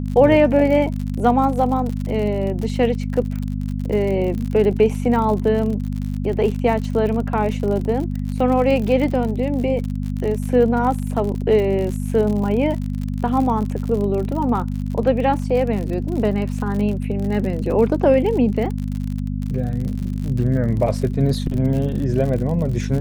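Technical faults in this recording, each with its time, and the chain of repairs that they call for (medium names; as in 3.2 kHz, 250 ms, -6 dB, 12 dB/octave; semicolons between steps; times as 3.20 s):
crackle 59 per s -26 dBFS
hum 50 Hz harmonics 5 -24 dBFS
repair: de-click; de-hum 50 Hz, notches 5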